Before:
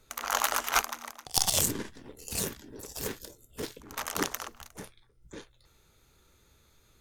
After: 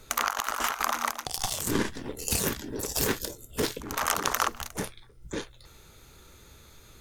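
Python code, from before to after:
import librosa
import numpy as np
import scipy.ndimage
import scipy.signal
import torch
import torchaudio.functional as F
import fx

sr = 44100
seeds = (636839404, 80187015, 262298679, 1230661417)

y = fx.dynamic_eq(x, sr, hz=1200.0, q=1.3, threshold_db=-44.0, ratio=4.0, max_db=6)
y = fx.over_compress(y, sr, threshold_db=-35.0, ratio=-1.0)
y = F.gain(torch.from_numpy(y), 6.0).numpy()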